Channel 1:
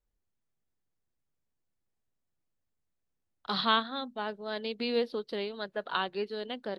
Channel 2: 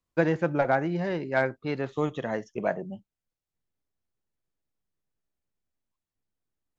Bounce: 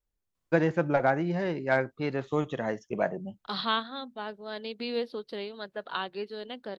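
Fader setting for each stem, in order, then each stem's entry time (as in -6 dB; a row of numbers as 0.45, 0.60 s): -2.0, -0.5 dB; 0.00, 0.35 s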